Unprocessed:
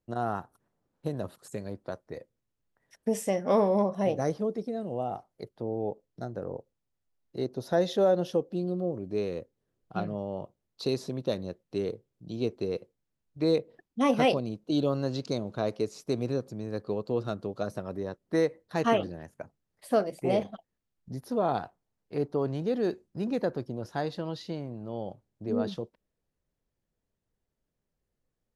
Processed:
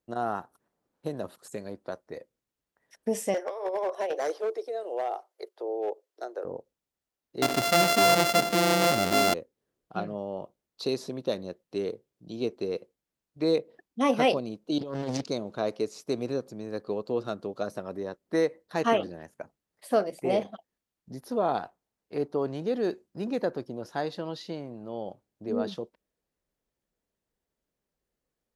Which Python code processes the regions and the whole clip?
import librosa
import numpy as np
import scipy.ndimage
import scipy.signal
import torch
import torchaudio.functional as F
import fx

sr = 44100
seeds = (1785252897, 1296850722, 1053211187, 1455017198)

y = fx.chain(x, sr, fx.steep_highpass(hz=350.0, slope=48),
    fx.over_compress(threshold_db=-28.0, ratio=-0.5),
    fx.clip_hard(threshold_db=-25.0), at=(3.34, 6.45))
y = fx.chain(y, sr, fx.sample_sort(block=64),
    fx.peak_eq(hz=4200.0, db=3.5, octaves=1.1),
    fx.env_flatten(amount_pct=70), at=(7.42, 9.34))
y = fx.chain(y, sr, fx.low_shelf(hz=310.0, db=4.5),
    fx.over_compress(threshold_db=-29.0, ratio=-0.5),
    fx.doppler_dist(depth_ms=0.66), at=(14.78, 15.24))
y = scipy.signal.sosfilt(scipy.signal.butter(2, 40.0, 'highpass', fs=sr, output='sos'), y)
y = fx.peak_eq(y, sr, hz=100.0, db=-10.0, octaves=1.6)
y = y * 10.0 ** (1.5 / 20.0)